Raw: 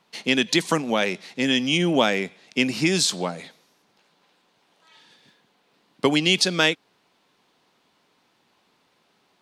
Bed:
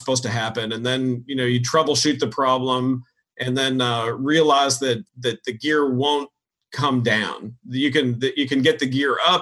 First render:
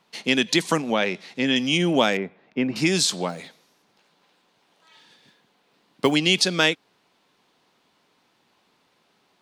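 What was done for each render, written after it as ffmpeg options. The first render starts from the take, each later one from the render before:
-filter_complex "[0:a]asettb=1/sr,asplit=3[a][b][c];[a]atrim=end=0.824[d];[b]atrim=start=0.82:end=1.56,asetpts=PTS-STARTPTS,afade=t=in:d=0.004:c=qsin,afade=t=out:st=0.736:d=0.004:c=qsin,acrossover=split=5300[e][f];[f]acompressor=threshold=-54dB:ratio=4:attack=1:release=60[g];[e][g]amix=inputs=2:normalize=0[h];[c]atrim=start=1.556[i];[d][h]acrossfade=d=0.004:c1=hsin:c2=qsin[j];[j][i]acrossfade=d=0.004:c1=qsin:c2=hsin,asettb=1/sr,asplit=3[k][l][m];[k]atrim=end=2.174[n];[l]atrim=start=2.17:end=2.76,asetpts=PTS-STARTPTS,afade=t=in:d=0.004:c=qsin,afade=t=out:st=0.586:d=0.004:c=qsin,lowpass=1.5k[o];[m]atrim=start=2.756[p];[n][o]acrossfade=d=0.004:c1=hsin:c2=qsin[q];[q][p]acrossfade=d=0.004:c1=qsin:c2=hsin,asettb=1/sr,asplit=3[r][s][t];[r]atrim=end=3.294[u];[s]atrim=start=3.29:end=6.12,asetpts=PTS-STARTPTS,afade=t=in:d=0.004:c=qsin,afade=t=out:st=2.826:d=0.004:c=qsin,acrusher=bits=8:mode=log:mix=0:aa=0.000001[v];[t]atrim=start=6.116[w];[u][v]acrossfade=d=0.004:c1=hsin:c2=qsin[x];[x][w]acrossfade=d=0.004:c1=qsin:c2=hsin"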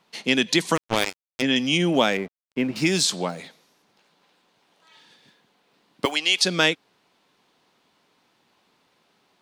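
-filter_complex "[0:a]asplit=3[a][b][c];[a]afade=t=out:st=0.75:d=0.02[d];[b]acrusher=bits=2:mix=0:aa=0.5,afade=t=in:st=0.75:d=0.02,afade=t=out:st=1.41:d=0.02[e];[c]afade=t=in:st=1.41:d=0.02[f];[d][e][f]amix=inputs=3:normalize=0,asettb=1/sr,asplit=3[g][h][i];[g]atrim=end=1.934[j];[h]atrim=start=1.93:end=3.04,asetpts=PTS-STARTPTS,afade=t=in:d=0.004:c=qsin,afade=t=out:st=1.106:d=0.004:c=qsin,aeval=exprs='sgn(val(0))*max(abs(val(0))-0.00631,0)':c=same[k];[i]atrim=start=3.036[l];[j][k]acrossfade=d=0.004:c1=hsin:c2=qsin[m];[m][l]acrossfade=d=0.004:c1=qsin:c2=hsin,asettb=1/sr,asplit=3[n][o][p];[n]atrim=end=6.054[q];[o]atrim=start=6.05:end=6.45,asetpts=PTS-STARTPTS,afade=t=in:d=0.004:c=qsin,afade=t=out:st=0.396:d=0.004:c=qsin,highpass=710[r];[p]atrim=start=6.446[s];[q][r]acrossfade=d=0.004:c1=hsin:c2=qsin[t];[t][s]acrossfade=d=0.004:c1=qsin:c2=hsin"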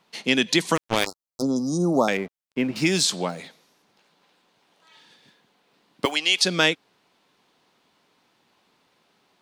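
-filter_complex "[0:a]asettb=1/sr,asplit=3[a][b][c];[a]atrim=end=1.064[d];[b]atrim=start=1.06:end=2.08,asetpts=PTS-STARTPTS,afade=t=in:d=0.004:c=qsin,afade=t=out:st=1.016:d=0.004:c=qsin,asuperstop=centerf=2300:order=20:qfactor=0.88[e];[c]atrim=start=2.076[f];[d][e]acrossfade=d=0.004:c1=hsin:c2=qsin[g];[g][f]acrossfade=d=0.004:c1=qsin:c2=hsin"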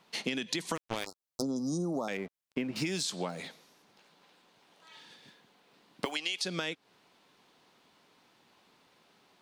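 -af "alimiter=limit=-10.5dB:level=0:latency=1:release=29,acompressor=threshold=-30dB:ratio=12"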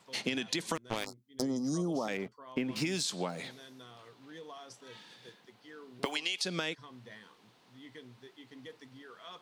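-filter_complex "[1:a]volume=-32dB[a];[0:a][a]amix=inputs=2:normalize=0"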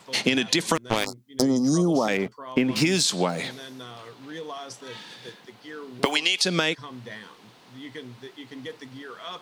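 -af "volume=11.5dB"

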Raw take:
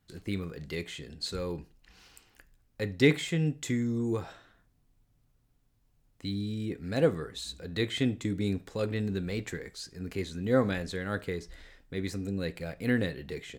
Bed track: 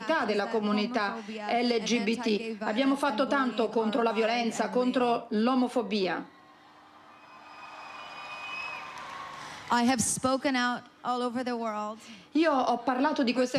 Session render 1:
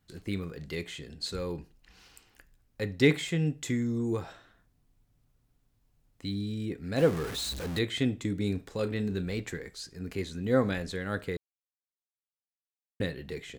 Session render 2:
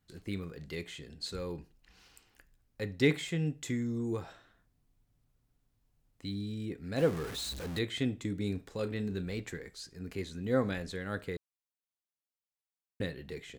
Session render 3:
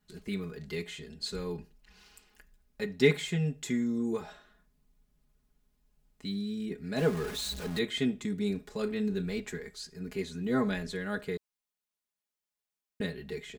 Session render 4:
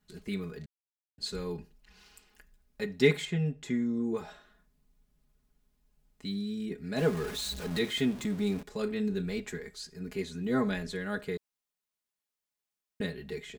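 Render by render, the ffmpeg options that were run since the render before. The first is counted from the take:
-filter_complex "[0:a]asettb=1/sr,asplit=3[a][b][c];[a]atrim=end=6.984[d];[b]atrim=start=6.98:end=7.79,asetpts=PTS-STARTPTS,afade=t=in:d=0.004:c=qsin,afade=t=out:st=0.806:d=0.004:c=qsin,aeval=exprs='val(0)+0.5*0.0211*sgn(val(0))':c=same[e];[c]atrim=start=7.786[f];[d][e]acrossfade=d=0.004:c1=hsin:c2=qsin[g];[g][f]acrossfade=d=0.004:c1=qsin:c2=hsin,asettb=1/sr,asplit=3[h][i][j];[h]atrim=end=8.474[k];[i]atrim=start=8.47:end=9.35,asetpts=PTS-STARTPTS,afade=t=in:d=0.004:c=qsin,afade=t=out:st=0.876:d=0.004:c=qsin,asplit=2[l][m];[m]adelay=33,volume=-13dB[n];[l][n]amix=inputs=2:normalize=0,atrim=end_sample=38808[o];[j]atrim=start=9.346[p];[k][o]acrossfade=d=0.004:c1=hsin:c2=qsin[q];[q][p]acrossfade=d=0.004:c1=qsin:c2=hsin,asplit=3[r][s][t];[r]atrim=end=11.37,asetpts=PTS-STARTPTS,afade=t=out:st=11.366:d=0.004:c=hsin[u];[s]atrim=start=11.37:end=13,asetpts=PTS-STARTPTS,volume=0[v];[t]atrim=start=13,asetpts=PTS-STARTPTS,afade=t=in:d=0.004:c=hsin[w];[u][v][w]concat=n=3:v=0:a=1"
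-af "volume=-4dB"
-af "aecho=1:1:4.8:0.93"
-filter_complex "[0:a]asettb=1/sr,asplit=3[a][b][c];[a]atrim=end=3.254[d];[b]atrim=start=3.25:end=4.17,asetpts=PTS-STARTPTS,afade=t=in:d=0.004:c=qsin,afade=t=out:st=0.916:d=0.004:c=qsin,lowpass=f=2.6k:p=1[e];[c]atrim=start=4.166[f];[d][e]acrossfade=d=0.004:c1=hsin:c2=qsin[g];[g][f]acrossfade=d=0.004:c1=qsin:c2=hsin,asettb=1/sr,asplit=3[h][i][j];[h]atrim=end=7.714[k];[i]atrim=start=7.71:end=8.63,asetpts=PTS-STARTPTS,afade=t=in:d=0.004:c=qsin,afade=t=out:st=0.916:d=0.004:c=qsin,aeval=exprs='val(0)+0.5*0.00944*sgn(val(0))':c=same[l];[j]atrim=start=8.626[m];[k][l]acrossfade=d=0.004:c1=hsin:c2=qsin[n];[n][m]acrossfade=d=0.004:c1=qsin:c2=hsin,asplit=3[o][p][q];[o]atrim=end=0.66,asetpts=PTS-STARTPTS,afade=t=out:st=0.656:d=0.004:c=hsin[r];[p]atrim=start=0.66:end=1.18,asetpts=PTS-STARTPTS,volume=0[s];[q]atrim=start=1.18,asetpts=PTS-STARTPTS,afade=t=in:d=0.004:c=hsin[t];[r][s][t]concat=n=3:v=0:a=1"

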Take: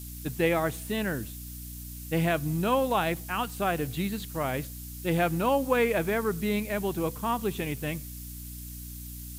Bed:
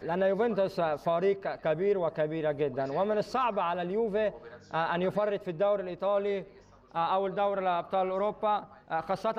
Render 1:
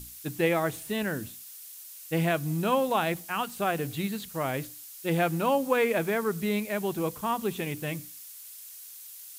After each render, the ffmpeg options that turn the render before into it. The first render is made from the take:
-af "bandreject=f=60:t=h:w=6,bandreject=f=120:t=h:w=6,bandreject=f=180:t=h:w=6,bandreject=f=240:t=h:w=6,bandreject=f=300:t=h:w=6"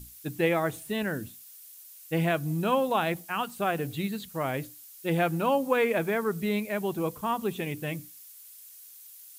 -af "afftdn=nr=6:nf=-46"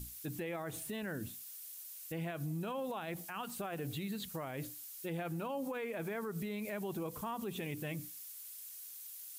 -af "acompressor=threshold=-28dB:ratio=6,alimiter=level_in=8dB:limit=-24dB:level=0:latency=1:release=82,volume=-8dB"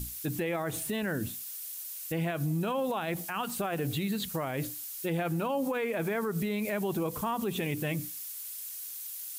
-af "volume=8.5dB"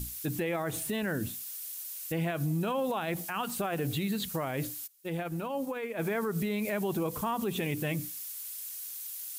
-filter_complex "[0:a]asplit=3[a][b][c];[a]afade=t=out:st=4.86:d=0.02[d];[b]agate=range=-33dB:threshold=-27dB:ratio=3:release=100:detection=peak,afade=t=in:st=4.86:d=0.02,afade=t=out:st=5.97:d=0.02[e];[c]afade=t=in:st=5.97:d=0.02[f];[d][e][f]amix=inputs=3:normalize=0"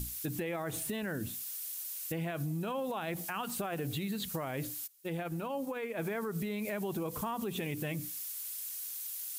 -af "acompressor=threshold=-34dB:ratio=3"

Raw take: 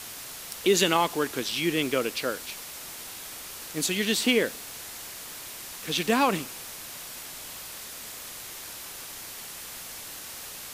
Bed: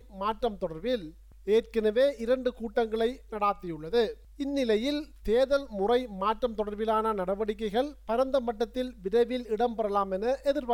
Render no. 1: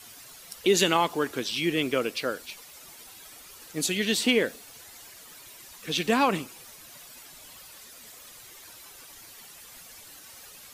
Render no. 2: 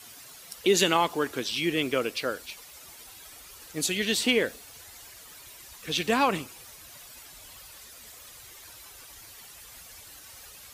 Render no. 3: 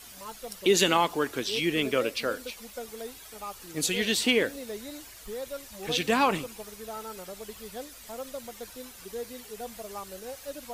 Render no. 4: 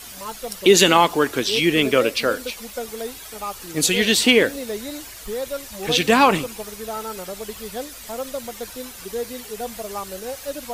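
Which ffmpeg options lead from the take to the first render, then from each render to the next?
-af "afftdn=nr=11:nf=-41"
-af "highpass=46,asubboost=boost=4.5:cutoff=83"
-filter_complex "[1:a]volume=-12.5dB[a];[0:a][a]amix=inputs=2:normalize=0"
-af "volume=9dB,alimiter=limit=-1dB:level=0:latency=1"

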